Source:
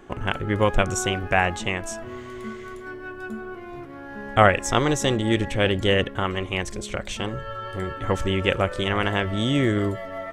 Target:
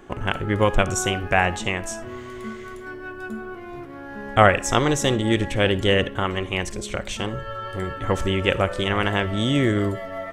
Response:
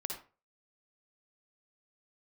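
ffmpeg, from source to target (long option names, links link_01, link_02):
-filter_complex "[0:a]asplit=2[link_01][link_02];[1:a]atrim=start_sample=2205,highshelf=frequency=6100:gain=11[link_03];[link_02][link_03]afir=irnorm=-1:irlink=0,volume=-15dB[link_04];[link_01][link_04]amix=inputs=2:normalize=0"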